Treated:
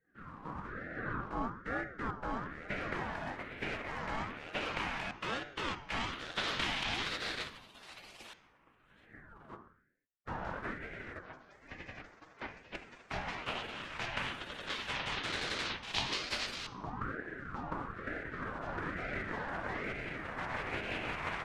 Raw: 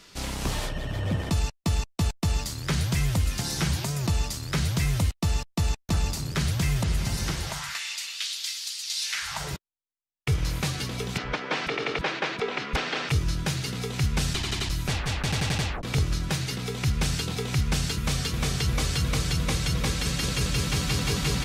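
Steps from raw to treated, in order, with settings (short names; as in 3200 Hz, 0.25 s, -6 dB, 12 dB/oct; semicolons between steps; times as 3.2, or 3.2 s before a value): high shelf 3100 Hz +9.5 dB; spectral gate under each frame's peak -20 dB weak; dynamic EQ 470 Hz, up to +5 dB, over -54 dBFS, Q 1; LFO low-pass saw up 0.12 Hz 630–3800 Hz; on a send at -6 dB: reverb RT60 0.75 s, pre-delay 3 ms; on the sum: ring modulator with a swept carrier 710 Hz, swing 45%, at 1.1 Hz; gain -2 dB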